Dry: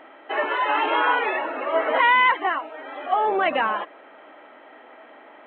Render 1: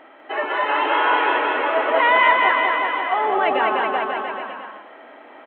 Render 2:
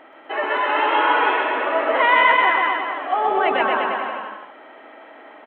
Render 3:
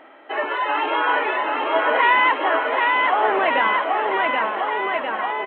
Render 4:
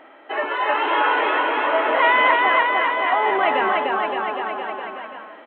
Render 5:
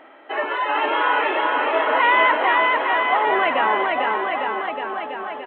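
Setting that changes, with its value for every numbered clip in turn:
bouncing-ball echo, first gap: 0.2, 0.13, 0.78, 0.3, 0.45 s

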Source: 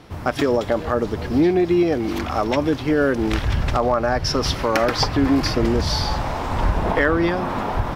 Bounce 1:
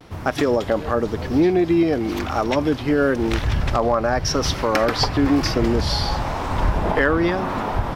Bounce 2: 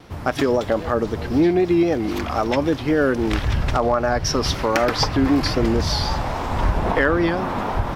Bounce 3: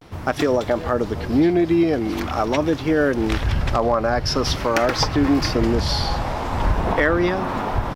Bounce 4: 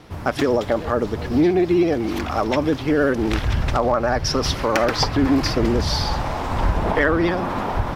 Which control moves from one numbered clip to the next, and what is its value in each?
vibrato, rate: 0.97, 3.8, 0.45, 16 Hz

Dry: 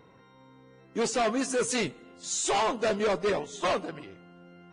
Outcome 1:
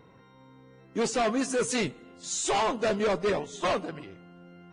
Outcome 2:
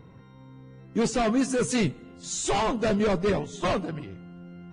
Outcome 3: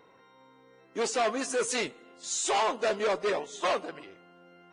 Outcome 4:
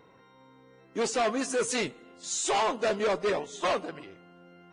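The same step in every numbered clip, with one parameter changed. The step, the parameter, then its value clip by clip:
tone controls, bass: +3, +14, -13, -5 dB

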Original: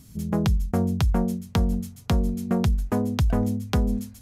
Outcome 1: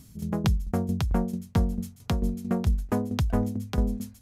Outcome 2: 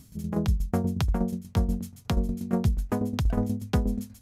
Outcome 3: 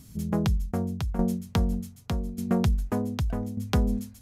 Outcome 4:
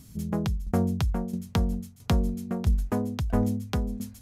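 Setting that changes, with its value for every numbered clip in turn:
tremolo, rate: 4.5, 8.3, 0.84, 1.5 Hz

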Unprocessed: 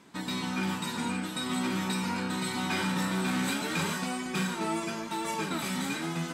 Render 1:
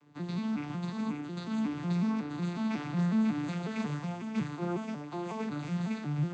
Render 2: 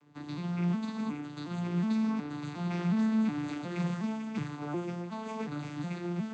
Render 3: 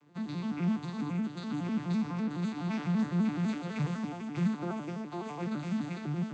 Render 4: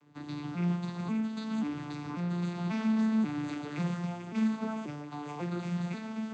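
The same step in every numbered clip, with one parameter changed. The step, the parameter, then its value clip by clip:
arpeggiated vocoder, a note every: 183, 364, 84, 539 ms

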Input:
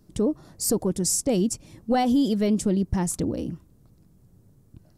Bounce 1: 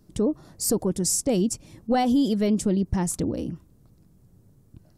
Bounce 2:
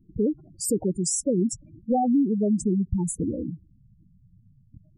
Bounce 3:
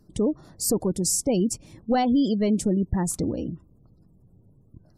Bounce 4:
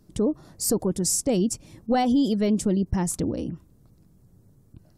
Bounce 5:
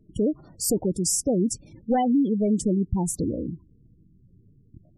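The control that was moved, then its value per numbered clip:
spectral gate, under each frame's peak: -60, -10, -35, -50, -20 dB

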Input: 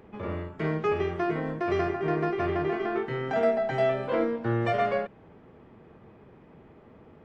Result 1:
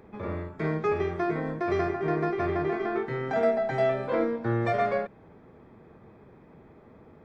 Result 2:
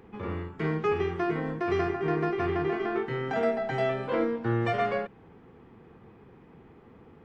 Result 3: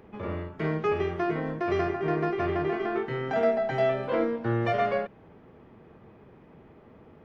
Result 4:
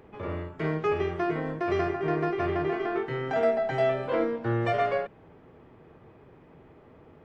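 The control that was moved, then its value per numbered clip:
notch, frequency: 2900, 610, 7700, 210 Hz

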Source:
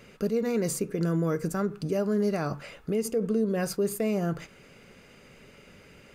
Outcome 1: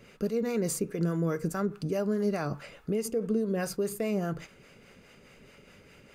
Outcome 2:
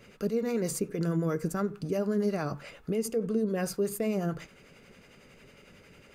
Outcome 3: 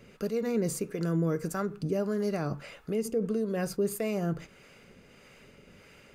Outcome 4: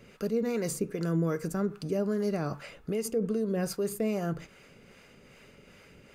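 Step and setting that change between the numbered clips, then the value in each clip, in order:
harmonic tremolo, rate: 4.8, 11, 1.6, 2.5 Hz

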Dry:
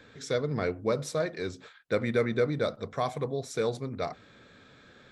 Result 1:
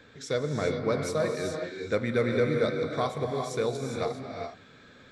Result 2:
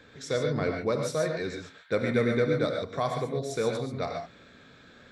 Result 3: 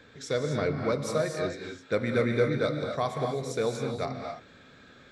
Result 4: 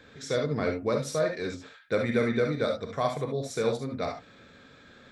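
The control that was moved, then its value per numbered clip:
non-linear reverb, gate: 440, 160, 290, 90 ms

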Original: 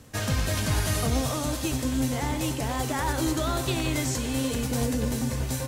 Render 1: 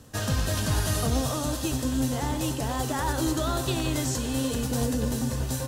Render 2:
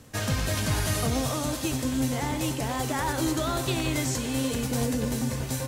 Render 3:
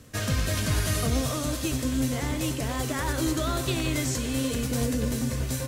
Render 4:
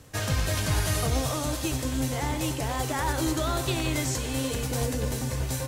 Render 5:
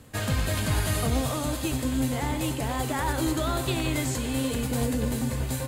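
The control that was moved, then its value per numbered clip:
bell, frequency: 2200, 66, 840, 230, 5700 Hz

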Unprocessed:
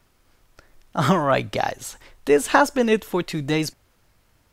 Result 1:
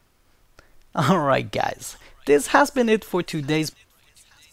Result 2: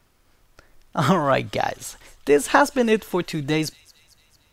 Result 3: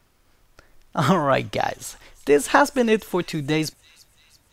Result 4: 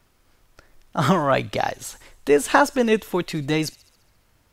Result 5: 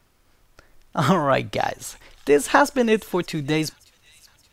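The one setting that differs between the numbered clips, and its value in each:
thin delay, time: 883, 225, 338, 68, 576 ms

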